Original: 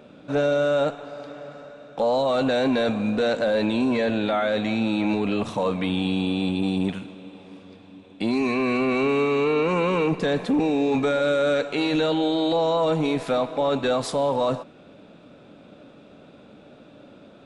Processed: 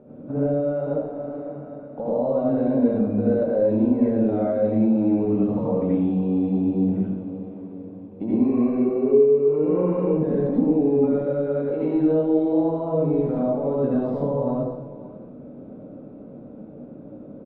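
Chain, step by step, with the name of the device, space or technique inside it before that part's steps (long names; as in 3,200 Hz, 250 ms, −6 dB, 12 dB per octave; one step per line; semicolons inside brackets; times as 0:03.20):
0:08.68–0:09.40: parametric band 420 Hz +15 dB 0.33 octaves
television next door (downward compressor 6 to 1, threshold −25 dBFS, peak gain reduction 16.5 dB; low-pass filter 550 Hz 12 dB per octave; convolution reverb RT60 0.70 s, pre-delay 69 ms, DRR −7 dB)
single-tap delay 541 ms −17.5 dB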